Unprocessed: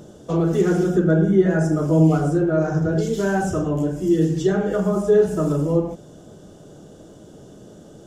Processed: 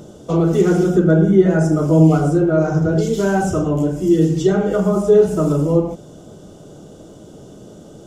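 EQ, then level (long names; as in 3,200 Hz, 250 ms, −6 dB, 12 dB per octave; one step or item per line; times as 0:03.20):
notch filter 1,700 Hz, Q 6.8
+4.0 dB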